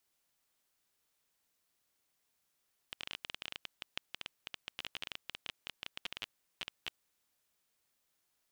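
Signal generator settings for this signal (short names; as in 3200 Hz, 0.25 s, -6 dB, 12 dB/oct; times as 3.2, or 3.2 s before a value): random clicks 15/s -22.5 dBFS 4.04 s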